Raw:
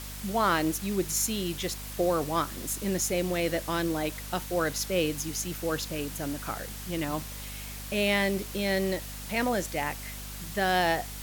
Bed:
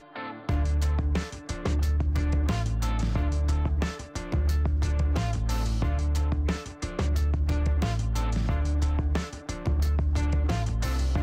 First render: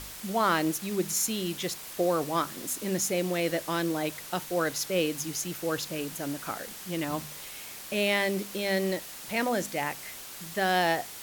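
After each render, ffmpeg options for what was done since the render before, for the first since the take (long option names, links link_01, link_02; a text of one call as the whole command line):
ffmpeg -i in.wav -af "bandreject=frequency=50:width_type=h:width=4,bandreject=frequency=100:width_type=h:width=4,bandreject=frequency=150:width_type=h:width=4,bandreject=frequency=200:width_type=h:width=4,bandreject=frequency=250:width_type=h:width=4" out.wav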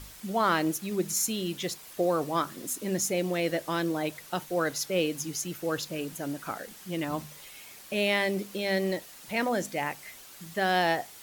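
ffmpeg -i in.wav -af "afftdn=noise_reduction=7:noise_floor=-43" out.wav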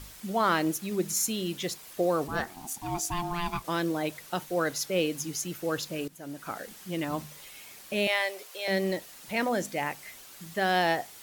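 ffmpeg -i in.wav -filter_complex "[0:a]asplit=3[link_01][link_02][link_03];[link_01]afade=type=out:start_time=2.27:duration=0.02[link_04];[link_02]aeval=exprs='val(0)*sin(2*PI*520*n/s)':channel_layout=same,afade=type=in:start_time=2.27:duration=0.02,afade=type=out:start_time=3.63:duration=0.02[link_05];[link_03]afade=type=in:start_time=3.63:duration=0.02[link_06];[link_04][link_05][link_06]amix=inputs=3:normalize=0,asettb=1/sr,asplit=3[link_07][link_08][link_09];[link_07]atrim=end=8.074[link_10];[link_08]atrim=start=8.07:end=8.68,asetpts=PTS-STARTPTS,afade=type=in:duration=0.004:curve=qsin,afade=type=out:start_time=0.606:duration=0.004:curve=qsin,highpass=frequency=540:width=0.5412,highpass=frequency=540:width=1.3066[link_11];[link_09]atrim=start=8.676[link_12];[link_10][link_11]acrossfade=duration=0.004:curve1=hsin:curve2=qsin[link_13];[link_13][link_12]acrossfade=duration=0.004:curve1=qsin:curve2=hsin,asplit=2[link_14][link_15];[link_14]atrim=end=6.08,asetpts=PTS-STARTPTS,afade=type=out:start_time=6.076:duration=0.004:curve=hsin:silence=0.16788[link_16];[link_15]atrim=start=6.08,asetpts=PTS-STARTPTS,afade=type=in:duration=0.52:silence=0.16788[link_17];[link_16][link_17]concat=n=2:v=0:a=1" out.wav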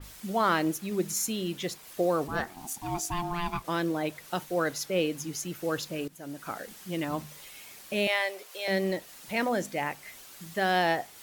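ffmpeg -i in.wav -af "adynamicequalizer=threshold=0.00631:dfrequency=3300:dqfactor=0.7:tfrequency=3300:tqfactor=0.7:attack=5:release=100:ratio=0.375:range=2.5:mode=cutabove:tftype=highshelf" out.wav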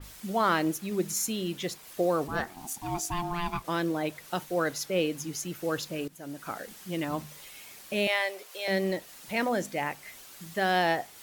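ffmpeg -i in.wav -af anull out.wav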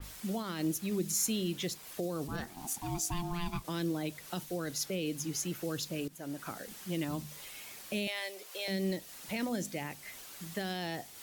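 ffmpeg -i in.wav -filter_complex "[0:a]alimiter=limit=-20dB:level=0:latency=1:release=26,acrossover=split=320|3000[link_01][link_02][link_03];[link_02]acompressor=threshold=-41dB:ratio=6[link_04];[link_01][link_04][link_03]amix=inputs=3:normalize=0" out.wav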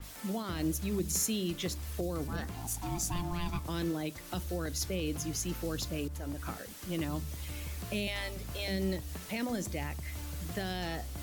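ffmpeg -i in.wav -i bed.wav -filter_complex "[1:a]volume=-16dB[link_01];[0:a][link_01]amix=inputs=2:normalize=0" out.wav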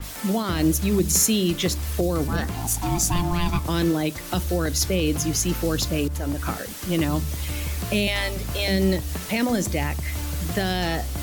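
ffmpeg -i in.wav -af "volume=12dB" out.wav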